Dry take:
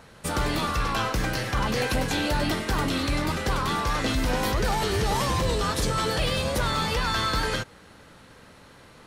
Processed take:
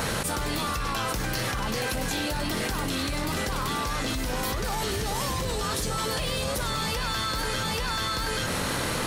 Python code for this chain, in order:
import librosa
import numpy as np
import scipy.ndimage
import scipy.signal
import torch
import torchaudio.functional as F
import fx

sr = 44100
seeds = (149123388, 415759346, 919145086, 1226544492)

p1 = fx.high_shelf(x, sr, hz=6200.0, db=9.5)
p2 = p1 + fx.echo_single(p1, sr, ms=833, db=-10.0, dry=0)
p3 = fx.env_flatten(p2, sr, amount_pct=100)
y = F.gain(torch.from_numpy(p3), -7.5).numpy()